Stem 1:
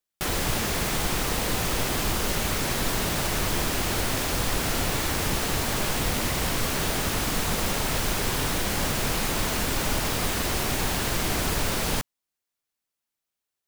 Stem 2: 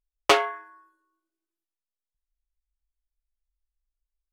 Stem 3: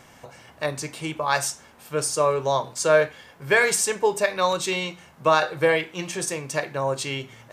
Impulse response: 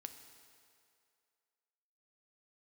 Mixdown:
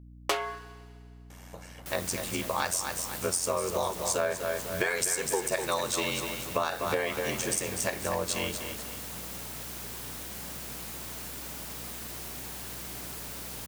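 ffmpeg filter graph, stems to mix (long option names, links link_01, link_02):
-filter_complex "[0:a]highpass=frequency=120:width=0.5412,highpass=frequency=120:width=1.3066,adelay=1650,volume=-17dB[link_01];[1:a]asoftclip=type=hard:threshold=-12dB,volume=-5.5dB,asplit=2[link_02][link_03];[link_03]volume=-5.5dB[link_04];[2:a]aeval=exprs='val(0)*sin(2*PI*44*n/s)':channel_layout=same,adelay=1300,volume=-1dB,asplit=2[link_05][link_06];[link_06]volume=-9dB[link_07];[3:a]atrim=start_sample=2205[link_08];[link_04][link_08]afir=irnorm=-1:irlink=0[link_09];[link_07]aecho=0:1:246|492|738|984|1230|1476:1|0.41|0.168|0.0689|0.0283|0.0116[link_10];[link_01][link_02][link_05][link_09][link_10]amix=inputs=5:normalize=0,highshelf=frequency=7200:gain=10.5,aeval=exprs='val(0)+0.00398*(sin(2*PI*60*n/s)+sin(2*PI*2*60*n/s)/2+sin(2*PI*3*60*n/s)/3+sin(2*PI*4*60*n/s)/4+sin(2*PI*5*60*n/s)/5)':channel_layout=same,acompressor=threshold=-25dB:ratio=6"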